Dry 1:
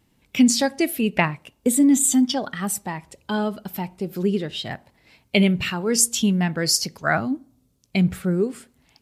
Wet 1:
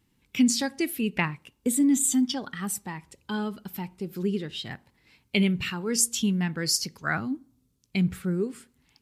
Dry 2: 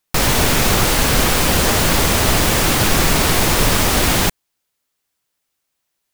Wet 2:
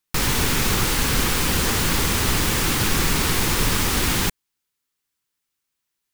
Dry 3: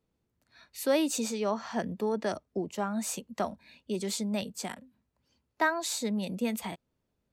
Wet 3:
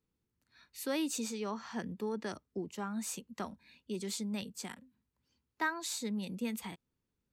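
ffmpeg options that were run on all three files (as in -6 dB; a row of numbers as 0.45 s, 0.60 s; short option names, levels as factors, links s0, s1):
-af "equalizer=f=640:t=o:w=0.53:g=-10.5,volume=0.562"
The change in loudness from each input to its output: -5.5 LU, -5.5 LU, -6.5 LU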